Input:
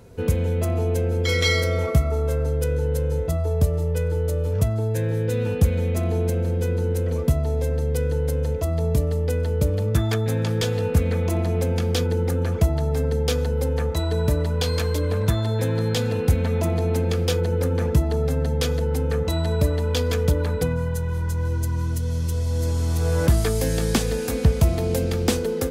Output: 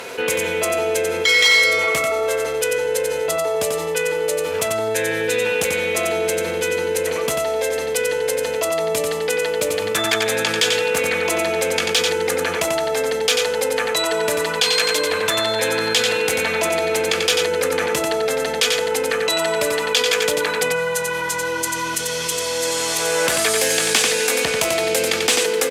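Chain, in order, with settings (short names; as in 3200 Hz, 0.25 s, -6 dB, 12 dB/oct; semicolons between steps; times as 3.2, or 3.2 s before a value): dynamic EQ 7900 Hz, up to +7 dB, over -49 dBFS, Q 1.2; downsampling 32000 Hz; bell 2500 Hz +10 dB 1.6 oct; on a send: echo 91 ms -6 dB; on the sum: one-sided clip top -10.5 dBFS; HPF 540 Hz 12 dB/oct; fast leveller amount 50%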